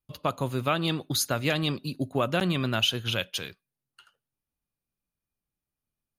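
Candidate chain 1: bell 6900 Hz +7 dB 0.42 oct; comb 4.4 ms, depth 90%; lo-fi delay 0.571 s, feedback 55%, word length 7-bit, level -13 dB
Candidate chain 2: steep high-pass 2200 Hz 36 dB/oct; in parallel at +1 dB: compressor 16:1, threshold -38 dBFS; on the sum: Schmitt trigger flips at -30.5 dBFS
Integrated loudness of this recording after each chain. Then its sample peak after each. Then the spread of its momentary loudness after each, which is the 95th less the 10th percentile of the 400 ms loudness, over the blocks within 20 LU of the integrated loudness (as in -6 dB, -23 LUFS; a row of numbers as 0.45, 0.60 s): -25.0, -38.5 LUFS; -8.0, -29.0 dBFS; 17, 8 LU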